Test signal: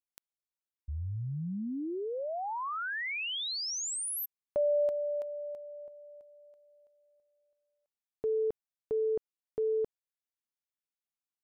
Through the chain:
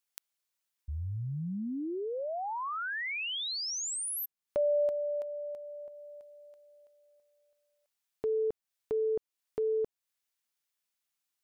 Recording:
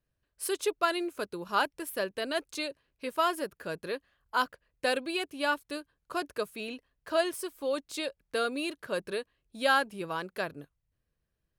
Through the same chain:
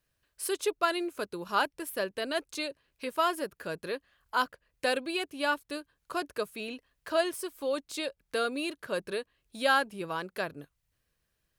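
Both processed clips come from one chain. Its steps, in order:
one half of a high-frequency compander encoder only

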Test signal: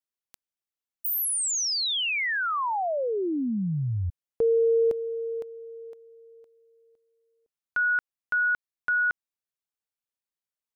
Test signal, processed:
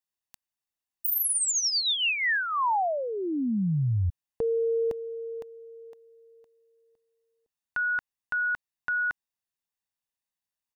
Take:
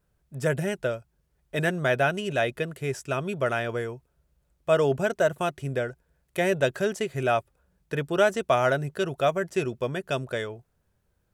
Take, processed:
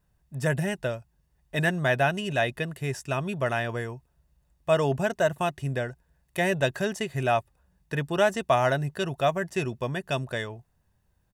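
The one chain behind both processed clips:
comb filter 1.1 ms, depth 41%

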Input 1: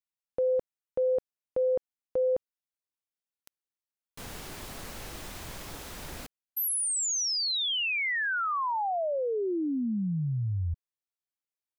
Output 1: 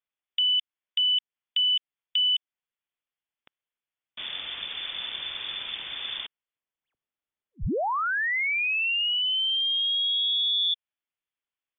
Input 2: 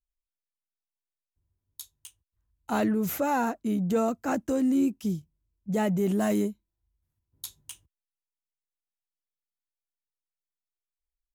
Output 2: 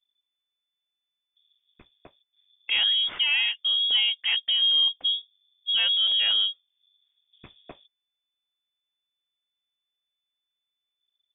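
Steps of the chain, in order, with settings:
adaptive Wiener filter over 9 samples
in parallel at +2 dB: downward compressor, threshold −36 dBFS
on the sum: voice inversion scrambler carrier 3,500 Hz

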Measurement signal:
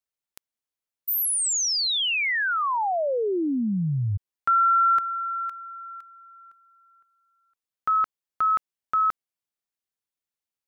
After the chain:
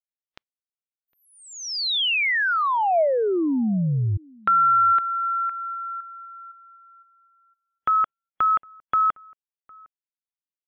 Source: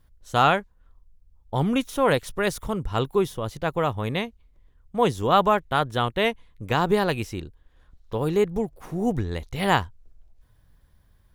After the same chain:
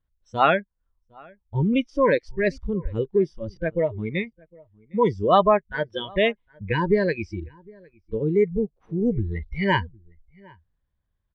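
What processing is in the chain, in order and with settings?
noise reduction from a noise print of the clip's start 25 dB
low-pass filter 3,900 Hz 24 dB per octave
dynamic equaliser 650 Hz, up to +5 dB, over −37 dBFS, Q 4.3
in parallel at +2 dB: downward compressor, threshold −35 dBFS
on the sum: slap from a distant wall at 130 metres, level −26 dB

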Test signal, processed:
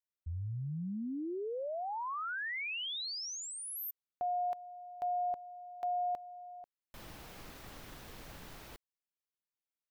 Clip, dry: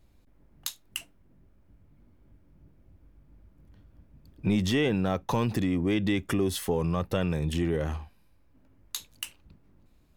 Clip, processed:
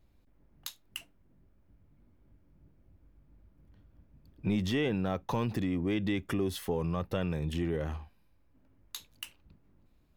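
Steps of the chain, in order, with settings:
parametric band 8,400 Hz −5.5 dB 1.2 octaves
level −4.5 dB

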